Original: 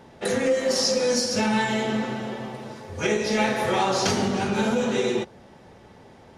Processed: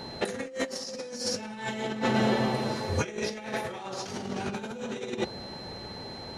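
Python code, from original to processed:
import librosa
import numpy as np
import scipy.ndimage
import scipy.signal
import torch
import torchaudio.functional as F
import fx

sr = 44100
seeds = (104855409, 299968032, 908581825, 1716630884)

y = x + 10.0 ** (-50.0 / 20.0) * np.sin(2.0 * np.pi * 4100.0 * np.arange(len(x)) / sr)
y = fx.over_compress(y, sr, threshold_db=-30.0, ratio=-0.5)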